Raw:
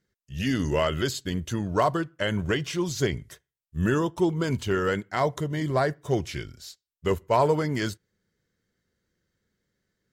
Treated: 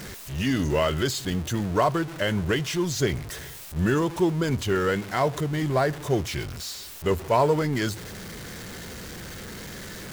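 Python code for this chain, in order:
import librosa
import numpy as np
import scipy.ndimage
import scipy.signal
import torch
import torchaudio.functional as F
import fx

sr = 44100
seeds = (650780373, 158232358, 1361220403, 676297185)

y = x + 0.5 * 10.0 ** (-32.0 / 20.0) * np.sign(x)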